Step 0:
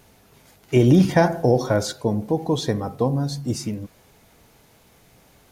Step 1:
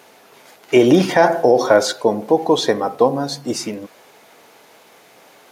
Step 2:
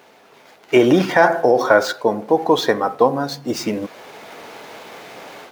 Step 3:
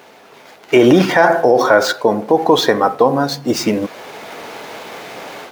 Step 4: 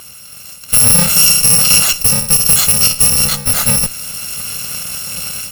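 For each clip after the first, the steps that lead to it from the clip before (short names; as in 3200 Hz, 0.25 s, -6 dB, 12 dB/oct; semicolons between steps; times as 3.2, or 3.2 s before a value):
HPF 410 Hz 12 dB/oct; high shelf 5100 Hz -8 dB; maximiser +12 dB; gain -1 dB
median filter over 5 samples; dynamic EQ 1400 Hz, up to +7 dB, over -33 dBFS, Q 1.2; AGC gain up to 12.5 dB; gain -1 dB
limiter -7 dBFS, peak gain reduction 5.5 dB; gain +6 dB
FFT order left unsorted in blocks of 128 samples; soft clip -8.5 dBFS, distortion -12 dB; added harmonics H 5 -21 dB, 8 -17 dB, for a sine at -8.5 dBFS; gain +5.5 dB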